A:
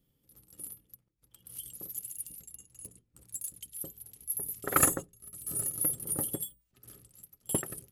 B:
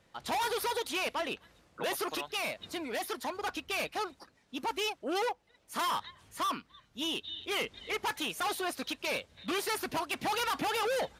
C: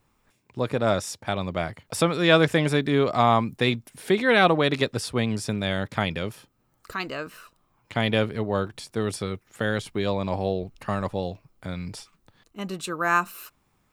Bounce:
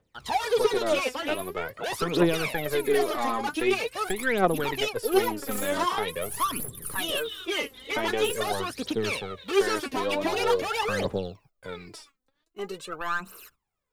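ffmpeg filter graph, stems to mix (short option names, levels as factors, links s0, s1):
-filter_complex "[0:a]aeval=exprs='(tanh(39.8*val(0)+0.4)-tanh(0.4))/39.8':c=same,adelay=750,volume=0.708[s0];[1:a]acrossover=split=9200[s1][s2];[s2]acompressor=threshold=0.002:ratio=4:attack=1:release=60[s3];[s1][s3]amix=inputs=2:normalize=0,volume=1[s4];[2:a]lowshelf=f=290:g=-4.5,acrossover=split=110|2500[s5][s6][s7];[s5]acompressor=threshold=0.00112:ratio=4[s8];[s6]acompressor=threshold=0.0794:ratio=4[s9];[s7]acompressor=threshold=0.00631:ratio=4[s10];[s8][s9][s10]amix=inputs=3:normalize=0,aeval=exprs='(tanh(6.31*val(0)+0.4)-tanh(0.4))/6.31':c=same,volume=0.708[s11];[s0][s4][s11]amix=inputs=3:normalize=0,agate=range=0.2:threshold=0.00126:ratio=16:detection=peak,equalizer=f=430:t=o:w=0.42:g=7,aphaser=in_gain=1:out_gain=1:delay=4:decay=0.73:speed=0.45:type=triangular"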